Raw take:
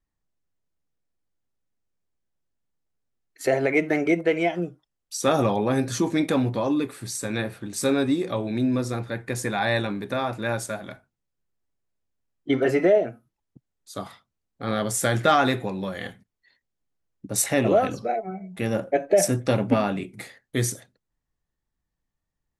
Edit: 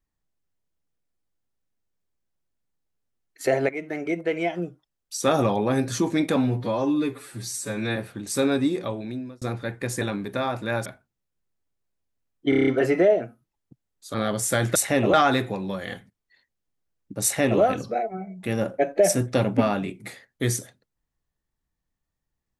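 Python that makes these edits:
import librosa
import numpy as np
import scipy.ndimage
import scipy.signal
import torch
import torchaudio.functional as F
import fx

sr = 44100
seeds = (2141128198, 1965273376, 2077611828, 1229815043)

y = fx.edit(x, sr, fx.fade_in_from(start_s=3.69, length_s=1.6, curve='qsin', floor_db=-13.5),
    fx.stretch_span(start_s=6.36, length_s=1.07, factor=1.5),
    fx.fade_out_span(start_s=8.18, length_s=0.7),
    fx.cut(start_s=9.48, length_s=0.3),
    fx.cut(start_s=10.62, length_s=0.26),
    fx.stutter(start_s=12.52, slice_s=0.03, count=7),
    fx.cut(start_s=13.99, length_s=0.67),
    fx.duplicate(start_s=17.37, length_s=0.38, to_s=15.27), tone=tone)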